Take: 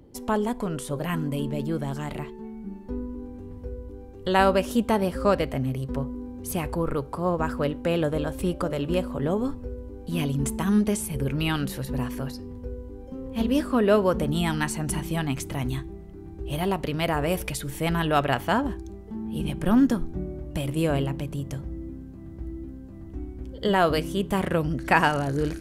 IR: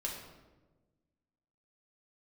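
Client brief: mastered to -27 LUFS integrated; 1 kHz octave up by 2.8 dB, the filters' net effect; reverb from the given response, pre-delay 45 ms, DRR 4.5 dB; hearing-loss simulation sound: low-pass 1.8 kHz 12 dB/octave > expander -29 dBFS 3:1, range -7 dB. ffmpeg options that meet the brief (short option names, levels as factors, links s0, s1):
-filter_complex "[0:a]equalizer=f=1000:t=o:g=4,asplit=2[s0][s1];[1:a]atrim=start_sample=2205,adelay=45[s2];[s1][s2]afir=irnorm=-1:irlink=0,volume=0.501[s3];[s0][s3]amix=inputs=2:normalize=0,lowpass=1800,agate=range=0.447:threshold=0.0355:ratio=3,volume=0.75"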